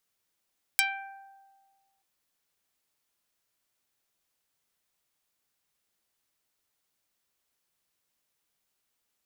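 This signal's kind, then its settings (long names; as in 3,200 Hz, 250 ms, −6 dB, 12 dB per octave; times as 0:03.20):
Karplus-Strong string G5, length 1.23 s, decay 1.61 s, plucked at 0.18, dark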